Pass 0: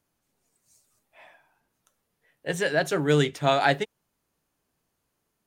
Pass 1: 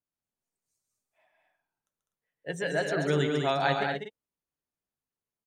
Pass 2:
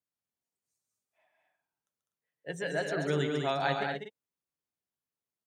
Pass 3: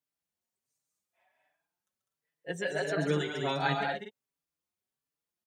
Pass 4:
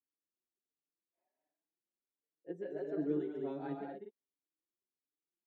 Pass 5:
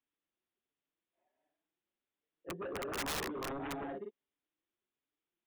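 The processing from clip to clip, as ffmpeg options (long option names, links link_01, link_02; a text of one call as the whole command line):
ffmpeg -i in.wav -filter_complex "[0:a]afftdn=noise_reduction=14:noise_floor=-38,asplit=2[link_01][link_02];[link_02]aecho=0:1:137|201.2|247.8:0.501|0.562|0.355[link_03];[link_01][link_03]amix=inputs=2:normalize=0,volume=-6dB" out.wav
ffmpeg -i in.wav -af "highpass=69,volume=-3.5dB" out.wav
ffmpeg -i in.wav -filter_complex "[0:a]asplit=2[link_01][link_02];[link_02]adelay=4.7,afreqshift=1.4[link_03];[link_01][link_03]amix=inputs=2:normalize=1,volume=4dB" out.wav
ffmpeg -i in.wav -af "bandpass=frequency=330:width_type=q:width=3.7:csg=0,volume=1.5dB" out.wav
ffmpeg -i in.wav -af "aeval=exprs='0.0668*(cos(1*acos(clip(val(0)/0.0668,-1,1)))-cos(1*PI/2))+0.0211*(cos(7*acos(clip(val(0)/0.0668,-1,1)))-cos(7*PI/2))':channel_layout=same,aresample=8000,aresample=44100,aeval=exprs='(mod(53.1*val(0)+1,2)-1)/53.1':channel_layout=same,volume=4.5dB" out.wav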